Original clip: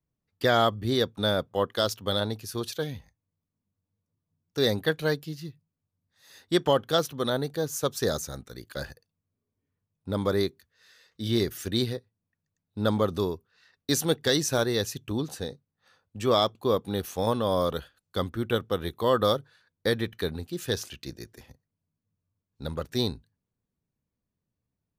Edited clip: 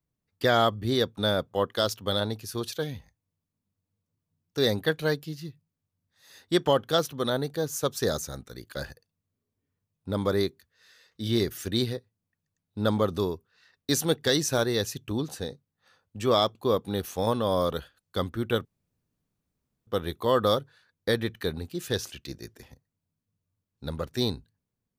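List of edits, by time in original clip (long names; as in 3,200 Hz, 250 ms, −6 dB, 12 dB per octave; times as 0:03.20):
0:18.65: splice in room tone 1.22 s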